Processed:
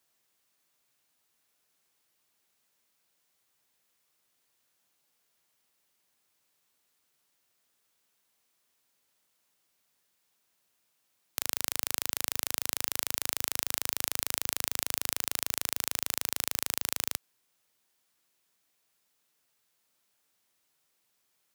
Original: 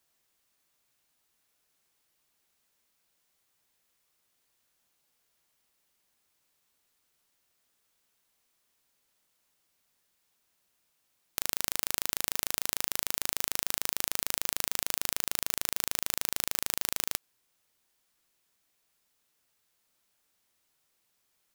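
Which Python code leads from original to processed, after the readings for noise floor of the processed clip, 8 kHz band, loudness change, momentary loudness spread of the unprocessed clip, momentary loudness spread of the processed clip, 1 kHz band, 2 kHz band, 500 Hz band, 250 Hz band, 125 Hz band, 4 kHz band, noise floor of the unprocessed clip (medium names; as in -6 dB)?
-75 dBFS, 0.0 dB, 0.0 dB, 1 LU, 1 LU, 0.0 dB, 0.0 dB, 0.0 dB, -0.5 dB, -2.0 dB, 0.0 dB, -75 dBFS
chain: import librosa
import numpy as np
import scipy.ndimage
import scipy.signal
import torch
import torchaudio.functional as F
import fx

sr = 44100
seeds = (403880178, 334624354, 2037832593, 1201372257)

y = scipy.signal.sosfilt(scipy.signal.butter(2, 67.0, 'highpass', fs=sr, output='sos'), x)
y = fx.low_shelf(y, sr, hz=130.0, db=-3.0)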